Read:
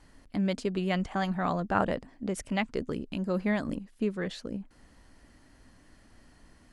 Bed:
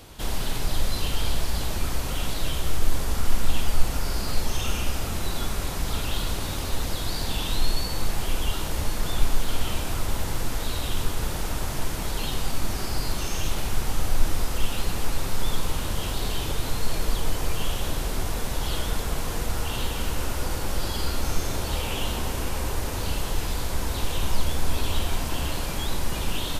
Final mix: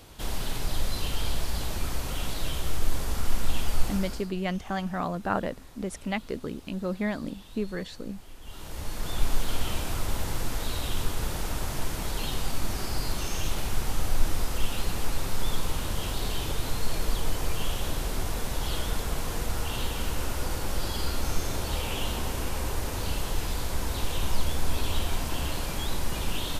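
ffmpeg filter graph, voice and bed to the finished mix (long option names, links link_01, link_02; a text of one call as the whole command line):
ffmpeg -i stem1.wav -i stem2.wav -filter_complex "[0:a]adelay=3550,volume=-1dB[link_01];[1:a]volume=15.5dB,afade=type=out:start_time=3.84:duration=0.47:silence=0.125893,afade=type=in:start_time=8.41:duration=0.94:silence=0.112202[link_02];[link_01][link_02]amix=inputs=2:normalize=0" out.wav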